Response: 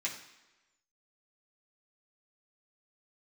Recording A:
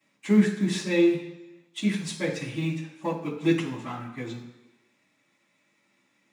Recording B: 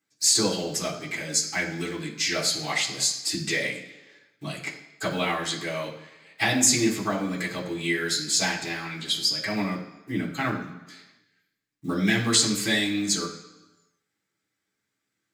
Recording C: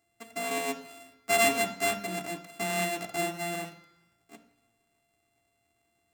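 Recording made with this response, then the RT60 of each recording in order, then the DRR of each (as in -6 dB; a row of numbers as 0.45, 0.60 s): B; 1.1, 1.1, 1.1 s; -13.5, -5.5, 4.0 dB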